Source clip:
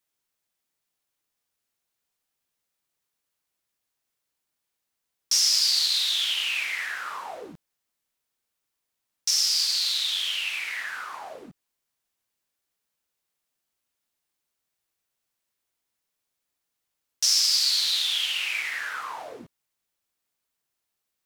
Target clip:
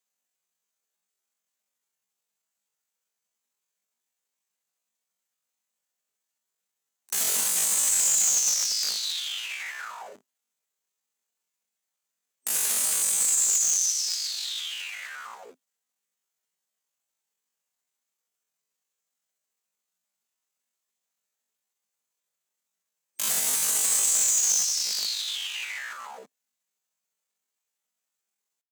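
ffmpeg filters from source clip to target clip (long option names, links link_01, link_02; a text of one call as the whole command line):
ffmpeg -i in.wav -af "aeval=exprs='(mod(8.41*val(0)+1,2)-1)/8.41':channel_layout=same,asetrate=83250,aresample=44100,atempo=0.529732,highpass=frequency=170:width=0.5412,highpass=frequency=170:width=1.3066,atempo=0.74,superequalizer=6b=0.282:15b=2" out.wav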